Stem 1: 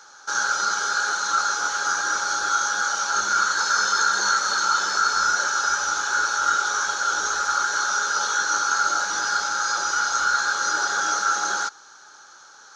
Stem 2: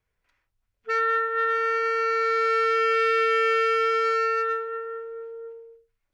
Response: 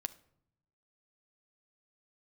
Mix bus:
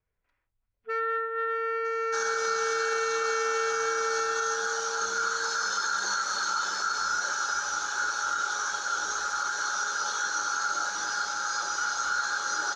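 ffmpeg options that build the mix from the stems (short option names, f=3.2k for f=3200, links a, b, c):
-filter_complex "[0:a]adelay=1850,volume=-6.5dB[a];[1:a]highshelf=f=2.5k:g=-10,volume=-3.5dB[b];[a][b]amix=inputs=2:normalize=0,alimiter=limit=-19.5dB:level=0:latency=1:release=41"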